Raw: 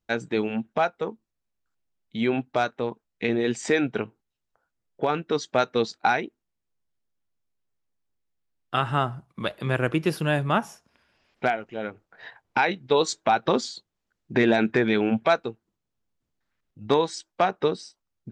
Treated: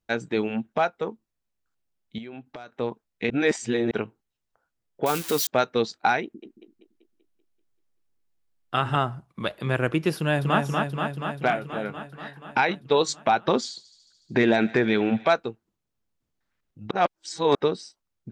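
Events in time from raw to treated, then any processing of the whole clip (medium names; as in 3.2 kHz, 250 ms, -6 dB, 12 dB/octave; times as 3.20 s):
2.18–2.72 s: compression 10:1, threshold -36 dBFS
3.30–3.91 s: reverse
5.06–5.47 s: zero-crossing glitches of -19.5 dBFS
6.23–8.96 s: two-band feedback delay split 330 Hz, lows 112 ms, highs 193 ms, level -4.5 dB
10.17–10.59 s: echo throw 240 ms, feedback 75%, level -3.5 dB
11.47–12.62 s: doubling 24 ms -11.5 dB
13.63–15.26 s: thinning echo 73 ms, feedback 80%, high-pass 580 Hz, level -19 dB
16.91–17.55 s: reverse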